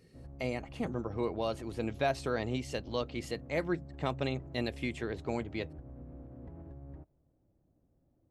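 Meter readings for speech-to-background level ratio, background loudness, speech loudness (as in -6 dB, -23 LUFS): 13.5 dB, -49.5 LUFS, -36.0 LUFS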